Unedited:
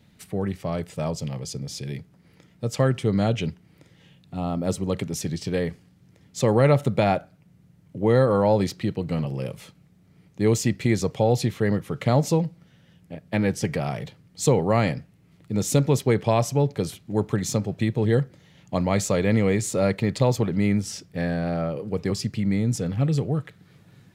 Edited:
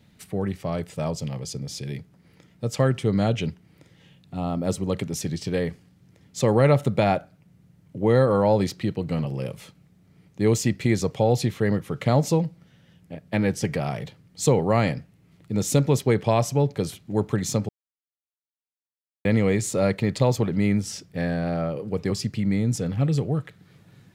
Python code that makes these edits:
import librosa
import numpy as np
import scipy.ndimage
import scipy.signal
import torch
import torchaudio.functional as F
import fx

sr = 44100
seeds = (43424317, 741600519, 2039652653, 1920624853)

y = fx.edit(x, sr, fx.silence(start_s=17.69, length_s=1.56), tone=tone)